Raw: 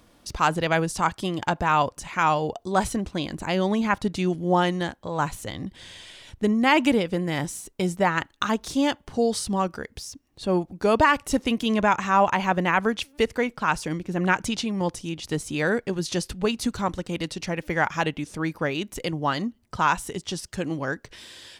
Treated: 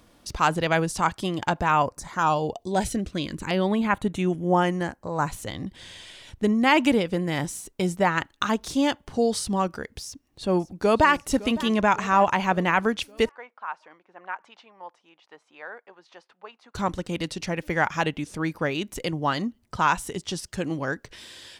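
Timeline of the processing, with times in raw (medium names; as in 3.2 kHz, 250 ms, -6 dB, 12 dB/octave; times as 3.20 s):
1.70–5.27 s: LFO notch saw down 0.69 Hz -> 0.12 Hz 660–7000 Hz
10.03–11.12 s: echo throw 560 ms, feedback 60%, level -17.5 dB
13.29–16.75 s: ladder band-pass 1.1 kHz, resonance 30%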